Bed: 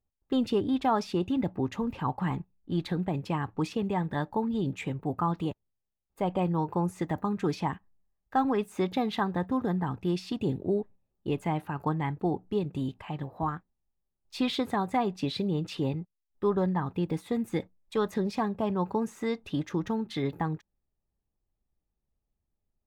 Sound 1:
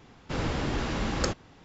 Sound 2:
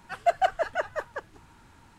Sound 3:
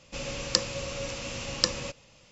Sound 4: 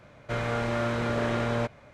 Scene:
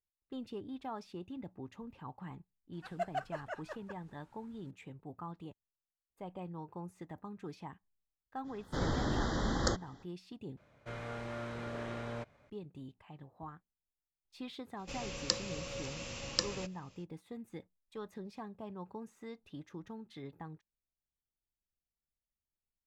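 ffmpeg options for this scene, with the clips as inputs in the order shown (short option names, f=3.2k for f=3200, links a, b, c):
-filter_complex "[0:a]volume=-16.5dB[a];[1:a]asuperstop=centerf=2500:order=12:qfactor=2.3[b];[a]asplit=2[c][d];[c]atrim=end=10.574[e];[4:a]atrim=end=1.93,asetpts=PTS-STARTPTS,volume=-13.5dB[f];[d]atrim=start=12.496[g];[2:a]atrim=end=1.98,asetpts=PTS-STARTPTS,volume=-14dB,afade=t=in:d=0.004:c=hsin,afade=t=out:st=1.976:d=0.004:c=hsin,adelay=2730[h];[b]atrim=end=1.64,asetpts=PTS-STARTPTS,volume=-3.5dB,afade=t=in:d=0.05,afade=t=out:st=1.59:d=0.05,adelay=8430[i];[3:a]atrim=end=2.31,asetpts=PTS-STARTPTS,volume=-7.5dB,afade=t=in:d=0.05,afade=t=out:st=2.26:d=0.05,adelay=14750[j];[e][f]acrossfade=d=0.004:c1=hsin:c2=hsin[k];[k][g]acrossfade=d=0.004:c1=hsin:c2=hsin[l];[l][h][i][j]amix=inputs=4:normalize=0"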